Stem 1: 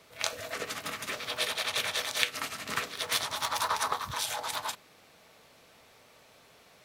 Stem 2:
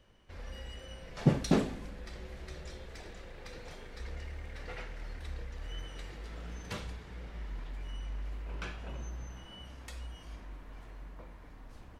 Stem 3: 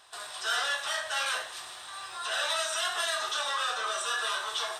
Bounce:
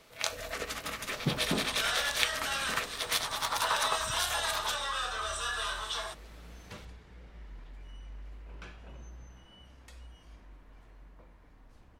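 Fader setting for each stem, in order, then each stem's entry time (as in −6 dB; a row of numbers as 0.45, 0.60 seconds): −1.0, −6.5, −3.5 decibels; 0.00, 0.00, 1.35 seconds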